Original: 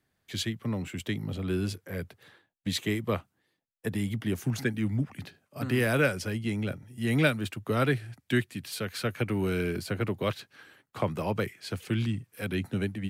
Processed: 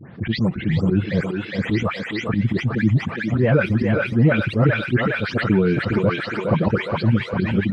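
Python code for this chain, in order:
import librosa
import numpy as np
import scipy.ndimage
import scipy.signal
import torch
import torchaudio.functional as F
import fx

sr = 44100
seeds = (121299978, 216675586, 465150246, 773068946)

p1 = fx.spec_delay(x, sr, highs='late', ms=397)
p2 = fx.dereverb_blind(p1, sr, rt60_s=0.98)
p3 = scipy.signal.sosfilt(scipy.signal.butter(4, 120.0, 'highpass', fs=sr, output='sos'), p2)
p4 = fx.low_shelf(p3, sr, hz=200.0, db=10.0)
p5 = fx.rider(p4, sr, range_db=3, speed_s=2.0)
p6 = p4 + (p5 * librosa.db_to_amplitude(2.0))
p7 = fx.auto_swell(p6, sr, attack_ms=108.0)
p8 = fx.stretch_vocoder(p7, sr, factor=0.59)
p9 = fx.spacing_loss(p8, sr, db_at_10k=39)
p10 = p9 + fx.echo_thinned(p9, sr, ms=412, feedback_pct=63, hz=800.0, wet_db=-3, dry=0)
p11 = fx.env_flatten(p10, sr, amount_pct=50)
y = p11 * librosa.db_to_amplitude(2.0)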